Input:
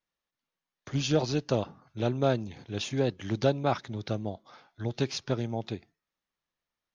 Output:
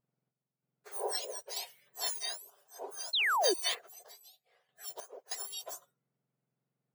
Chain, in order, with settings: spectrum inverted on a logarithmic axis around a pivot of 1.6 kHz; random-step tremolo 3.2 Hz, depth 85%; painted sound fall, 3.13–3.54 s, 330–4400 Hz -29 dBFS

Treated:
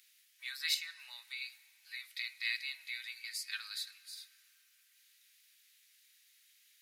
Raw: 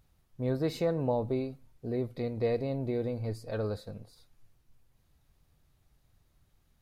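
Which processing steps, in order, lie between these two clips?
steep high-pass 1.9 kHz 36 dB/octave; 0.74–1.42 s: compression 4:1, threshold -53 dBFS, peak gain reduction 10 dB; reverberation RT60 5.4 s, pre-delay 75 ms, DRR 19.5 dB; trim +13.5 dB

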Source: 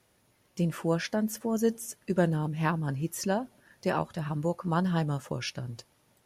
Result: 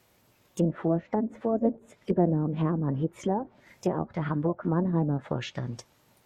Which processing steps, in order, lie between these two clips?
low-pass that closes with the level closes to 460 Hz, closed at -25.5 dBFS; formant shift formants +3 st; trim +3.5 dB

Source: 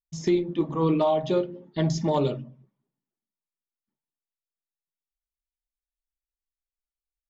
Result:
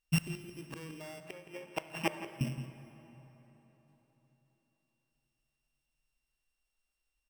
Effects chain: sorted samples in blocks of 16 samples; 1.20–2.41 s: three-band isolator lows -22 dB, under 530 Hz, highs -14 dB, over 2.1 kHz; compression 3:1, threshold -27 dBFS, peak gain reduction 7.5 dB; inverted gate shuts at -26 dBFS, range -28 dB; echo from a far wall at 29 m, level -13 dB; plate-style reverb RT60 4.2 s, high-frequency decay 0.65×, DRR 12 dB; trim +8.5 dB

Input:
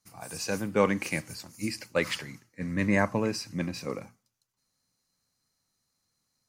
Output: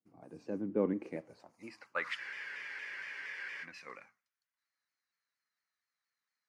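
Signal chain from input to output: band-pass sweep 310 Hz -> 1.8 kHz, 0.88–2.20 s; spectral freeze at 2.21 s, 1.42 s; vibrato with a chosen wave saw down 4.3 Hz, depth 100 cents

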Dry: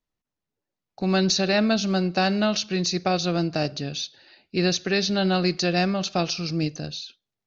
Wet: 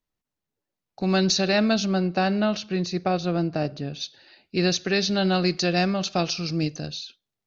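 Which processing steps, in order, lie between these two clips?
1.85–4.00 s: low-pass 2.6 kHz -> 1.3 kHz 6 dB/octave

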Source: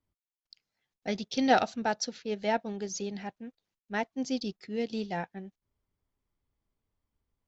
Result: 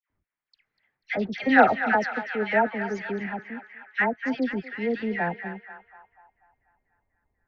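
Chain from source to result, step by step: band-passed feedback delay 244 ms, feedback 74%, band-pass 1.8 kHz, level -9 dB; low-pass sweep 1.9 kHz -> 770 Hz, 5.45–6.28 s; phase dispersion lows, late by 100 ms, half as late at 1.4 kHz; trim +5 dB

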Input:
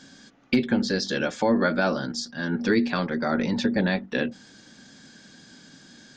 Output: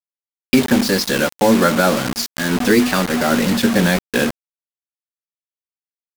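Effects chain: bit crusher 5-bit; vibrato 0.44 Hz 59 cents; trim +8 dB

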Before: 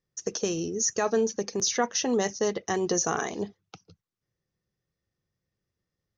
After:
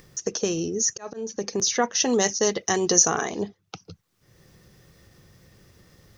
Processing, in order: 0.90–1.43 s: slow attack 387 ms; 2.00–3.08 s: treble shelf 3.2 kHz +10 dB; in parallel at +2 dB: upward compressor, threshold -27 dBFS; on the sum: trim -4 dB

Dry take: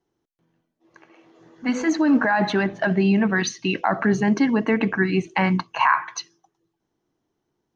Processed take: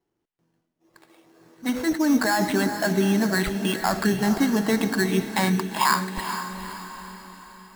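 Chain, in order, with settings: sample-rate reducer 6 kHz, jitter 0%; echo that smears into a reverb 454 ms, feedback 50%, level -8.5 dB; trim -2.5 dB

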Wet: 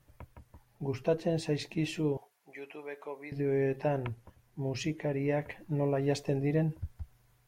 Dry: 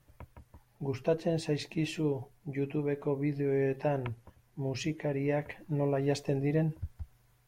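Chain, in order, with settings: 2.17–3.32 s: high-pass 740 Hz 12 dB/octave

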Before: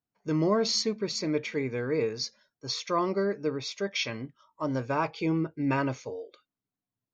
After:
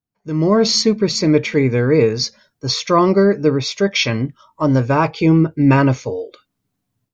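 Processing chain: level rider gain up to 15.5 dB; bass shelf 200 Hz +10 dB; trim -1.5 dB

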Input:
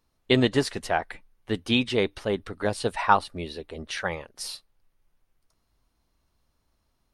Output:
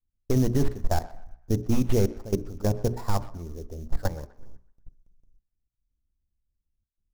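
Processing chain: tracing distortion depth 0.38 ms; level-controlled noise filter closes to 410 Hz, open at -18 dBFS; square tremolo 0.86 Hz, depth 60%, duty 90%; RIAA curve playback; gate with hold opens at -40 dBFS; treble shelf 2.2 kHz -12 dB; sample-rate reducer 6.1 kHz, jitter 20%; level held to a coarse grid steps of 20 dB; hum notches 60/120/180/240/300/360/420 Hz; on a send at -20 dB: reverberation RT60 0.70 s, pre-delay 3 ms; on the sum: peak limiter -17 dBFS, peak gain reduction 6 dB; band-passed feedback delay 125 ms, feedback 42%, band-pass 1.5 kHz, level -17 dB; trim +4.5 dB

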